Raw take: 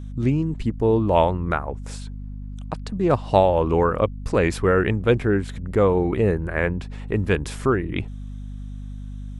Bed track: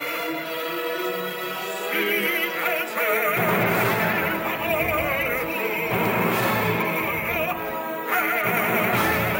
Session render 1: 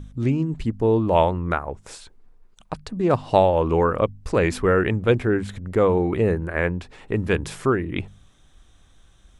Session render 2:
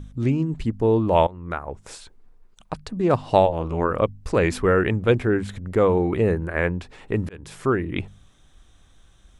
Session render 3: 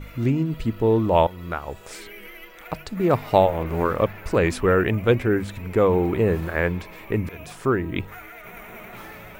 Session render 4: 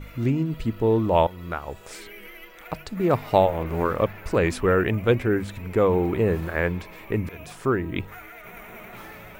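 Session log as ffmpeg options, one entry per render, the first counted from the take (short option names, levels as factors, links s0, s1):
-af "bandreject=f=50:t=h:w=4,bandreject=f=100:t=h:w=4,bandreject=f=150:t=h:w=4,bandreject=f=200:t=h:w=4,bandreject=f=250:t=h:w=4"
-filter_complex "[0:a]asplit=3[s0][s1][s2];[s0]afade=t=out:st=3.45:d=0.02[s3];[s1]tremolo=f=82:d=0.947,afade=t=in:st=3.45:d=0.02,afade=t=out:st=3.89:d=0.02[s4];[s2]afade=t=in:st=3.89:d=0.02[s5];[s3][s4][s5]amix=inputs=3:normalize=0,asplit=3[s6][s7][s8];[s6]atrim=end=1.27,asetpts=PTS-STARTPTS,afade=t=out:st=1.266:d=0.004:c=hsin:silence=0.0944061[s9];[s7]atrim=start=1.27:end=7.29,asetpts=PTS-STARTPTS,afade=t=in:d=0.55:silence=0.0944061,afade=t=out:st=6.016:d=0.004:c=hsin[s10];[s8]atrim=start=7.29,asetpts=PTS-STARTPTS,afade=t=in:d=0.46[s11];[s9][s10][s11]concat=n=3:v=0:a=1"
-filter_complex "[1:a]volume=0.112[s0];[0:a][s0]amix=inputs=2:normalize=0"
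-af "volume=0.841"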